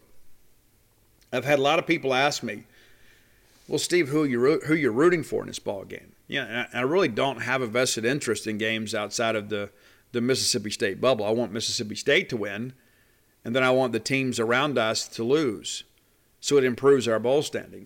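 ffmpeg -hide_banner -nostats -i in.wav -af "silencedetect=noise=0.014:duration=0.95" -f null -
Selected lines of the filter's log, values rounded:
silence_start: 0.00
silence_end: 1.33 | silence_duration: 1.33
silence_start: 2.59
silence_end: 3.69 | silence_duration: 1.10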